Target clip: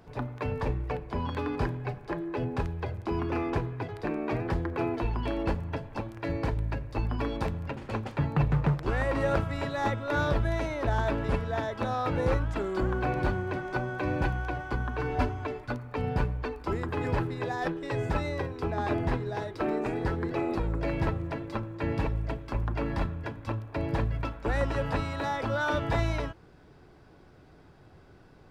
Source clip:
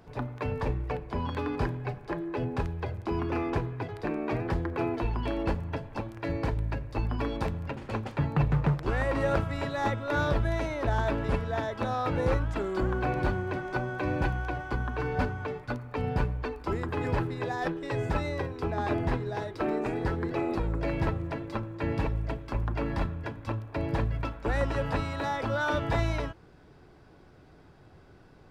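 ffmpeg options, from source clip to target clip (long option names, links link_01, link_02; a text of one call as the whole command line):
ffmpeg -i in.wav -filter_complex "[0:a]asettb=1/sr,asplit=3[link_01][link_02][link_03];[link_01]atrim=end=15.094[link_04];[link_02]atrim=start=15.09:end=15.68,asetpts=PTS-STARTPTS,afade=type=in:duration=0.004:curve=qsin,afade=type=out:start_time=0.586:duration=0.004:curve=qsin,aecho=1:1:3:0.64,atrim=end_sample=26019[link_05];[link_03]atrim=start=15.676[link_06];[link_04][link_05]acrossfade=duration=0.004:curve1=hsin:curve2=qsin[link_07];[link_07][link_06]acrossfade=duration=0.004:curve1=qsin:curve2=hsin" out.wav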